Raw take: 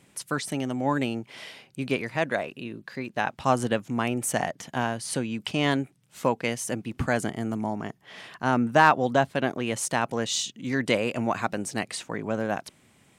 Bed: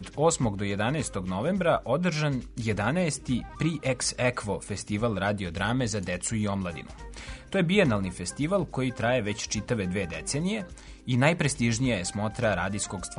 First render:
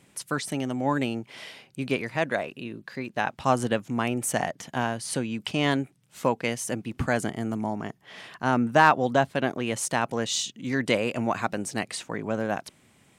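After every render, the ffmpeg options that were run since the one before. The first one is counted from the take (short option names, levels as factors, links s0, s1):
-af anull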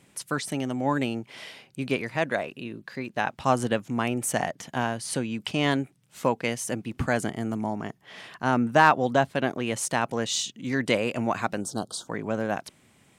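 -filter_complex "[0:a]asplit=3[s0][s1][s2];[s0]afade=t=out:st=11.6:d=0.02[s3];[s1]asuperstop=centerf=2200:order=12:qfactor=1.3,afade=t=in:st=11.6:d=0.02,afade=t=out:st=12.07:d=0.02[s4];[s2]afade=t=in:st=12.07:d=0.02[s5];[s3][s4][s5]amix=inputs=3:normalize=0"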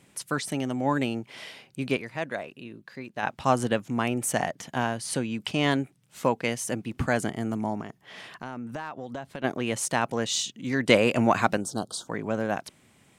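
-filter_complex "[0:a]asplit=3[s0][s1][s2];[s0]afade=t=out:st=7.81:d=0.02[s3];[s1]acompressor=threshold=0.0224:ratio=6:attack=3.2:release=140:knee=1:detection=peak,afade=t=in:st=7.81:d=0.02,afade=t=out:st=9.43:d=0.02[s4];[s2]afade=t=in:st=9.43:d=0.02[s5];[s3][s4][s5]amix=inputs=3:normalize=0,asettb=1/sr,asplit=3[s6][s7][s8];[s6]atrim=end=10.894[s9];[s7]atrim=start=10.89:end=11.57,asetpts=PTS-STARTPTS,afade=t=in:d=0.004:c=qsin,afade=t=out:st=0.676:d=0.004:c=qsin,acontrast=31[s10];[s8]atrim=start=11.566[s11];[s9][s10]acrossfade=d=0.004:c1=hsin:c2=qsin[s12];[s12][s11]acrossfade=d=0.004:c1=qsin:c2=hsin,asplit=3[s13][s14][s15];[s13]atrim=end=1.972[s16];[s14]atrim=start=1.968:end=3.232,asetpts=PTS-STARTPTS,volume=0.531[s17];[s15]atrim=start=3.228[s18];[s16][s17]acrossfade=d=0.004:c1=hsin:c2=hsin[s19];[s19][s18]acrossfade=d=0.004:c1=hsin:c2=hsin"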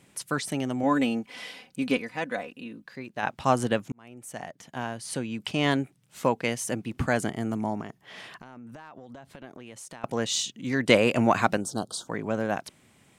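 -filter_complex "[0:a]asettb=1/sr,asplit=3[s0][s1][s2];[s0]atrim=end=0.834[s3];[s1]atrim=start=0.83:end=2.86,asetpts=PTS-STARTPTS,afade=t=in:d=0.004:c=qsin,afade=t=out:st=2.026:d=0.004:c=qsin,aecho=1:1:4:0.66,atrim=end_sample=89523[s4];[s2]atrim=start=2.856[s5];[s3][s4]acrossfade=d=0.004:c1=hsin:c2=qsin[s6];[s6][s5]acrossfade=d=0.004:c1=qsin:c2=hsin,asettb=1/sr,asplit=3[s7][s8][s9];[s7]atrim=end=8.404[s10];[s8]atrim=start=8.4:end=10.04,asetpts=PTS-STARTPTS,afade=t=in:d=0.004:c=qsin,afade=t=out:st=1.636:d=0.004:c=qsin,acompressor=threshold=0.00891:ratio=6:attack=3.2:release=140:knee=1:detection=peak[s11];[s9]atrim=start=10.036[s12];[s10][s11]acrossfade=d=0.004:c1=hsin:c2=qsin[s13];[s13][s12]acrossfade=d=0.004:c1=qsin:c2=hsin,asplit=2[s14][s15];[s14]atrim=end=3.92,asetpts=PTS-STARTPTS,afade=t=out:st=3.916:d=0.004:c=hsin[s16];[s15]atrim=start=3.92,asetpts=PTS-STARTPTS,afade=t=in:d=1.79[s17];[s16][s17]concat=n=2:v=0:a=1"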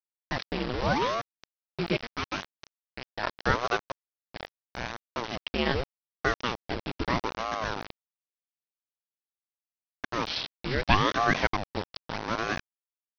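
-af "aresample=11025,acrusher=bits=4:mix=0:aa=0.000001,aresample=44100,aeval=exprs='val(0)*sin(2*PI*510*n/s+510*0.85/0.8*sin(2*PI*0.8*n/s))':c=same"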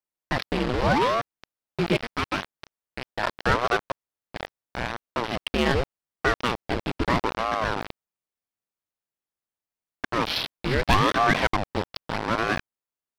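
-filter_complex "[0:a]asplit=2[s0][s1];[s1]adynamicsmooth=sensitivity=6.5:basefreq=2300,volume=1.19[s2];[s0][s2]amix=inputs=2:normalize=0,asoftclip=type=tanh:threshold=0.266"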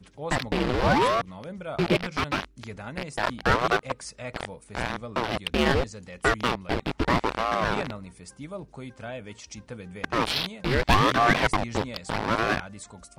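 -filter_complex "[1:a]volume=0.266[s0];[0:a][s0]amix=inputs=2:normalize=0"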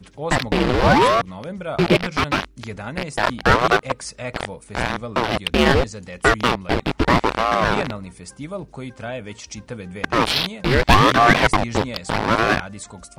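-af "volume=2.24"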